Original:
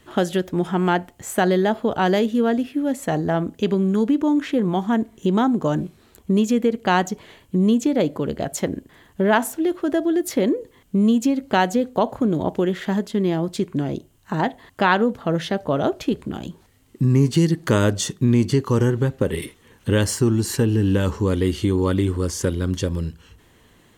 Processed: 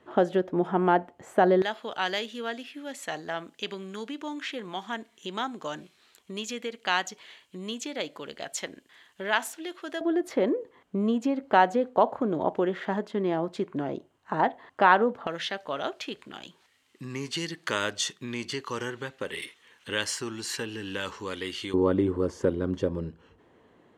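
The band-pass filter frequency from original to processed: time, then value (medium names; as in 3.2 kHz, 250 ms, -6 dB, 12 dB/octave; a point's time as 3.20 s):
band-pass filter, Q 0.74
630 Hz
from 1.62 s 3.3 kHz
from 10.01 s 910 Hz
from 15.27 s 2.7 kHz
from 21.74 s 530 Hz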